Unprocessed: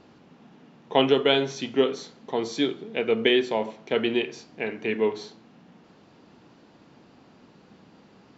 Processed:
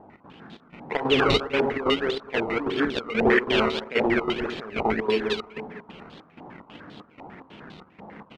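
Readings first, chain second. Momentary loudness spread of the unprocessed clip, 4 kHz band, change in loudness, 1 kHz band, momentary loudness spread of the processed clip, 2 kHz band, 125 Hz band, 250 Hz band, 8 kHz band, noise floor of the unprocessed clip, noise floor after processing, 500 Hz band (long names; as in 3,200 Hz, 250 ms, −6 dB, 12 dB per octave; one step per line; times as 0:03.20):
12 LU, 0.0 dB, +1.0 dB, +4.0 dB, 10 LU, +5.0 dB, +4.5 dB, +1.5 dB, can't be measured, −55 dBFS, −56 dBFS, 0.0 dB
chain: feedback delay that plays each chunk backwards 124 ms, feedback 43%, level −0.5 dB
in parallel at −1 dB: downward compressor, threshold −32 dBFS, peak gain reduction 18 dB
on the sum: flanger 0.43 Hz, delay 9.4 ms, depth 4.8 ms, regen +77%
sample-and-hold swept by an LFO 18×, swing 100% 1.7 Hz
single-tap delay 454 ms −20 dB
soft clipping −17 dBFS, distortion −15 dB
dynamic equaliser 960 Hz, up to −4 dB, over −38 dBFS, Q 0.83
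automatic gain control gain up to 4 dB
gate pattern "xx.xxxx..x" 186 BPM −12 dB
low-pass on a step sequencer 10 Hz 830–3,700 Hz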